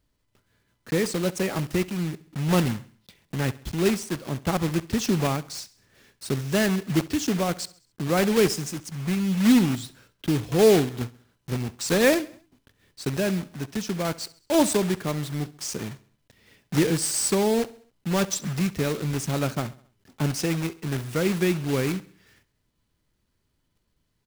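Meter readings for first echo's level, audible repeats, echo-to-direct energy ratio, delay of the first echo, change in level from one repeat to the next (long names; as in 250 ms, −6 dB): −20.0 dB, 3, −19.0 dB, 67 ms, −6.0 dB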